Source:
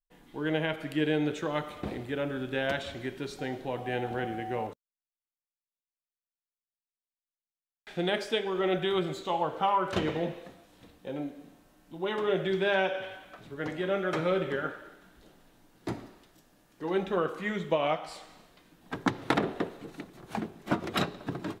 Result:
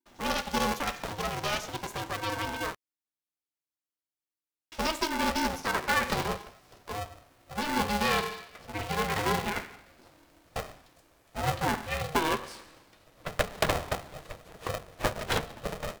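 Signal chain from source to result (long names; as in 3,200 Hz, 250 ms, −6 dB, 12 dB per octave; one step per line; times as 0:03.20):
gliding playback speed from 180% → 90%
ring modulator with a square carrier 310 Hz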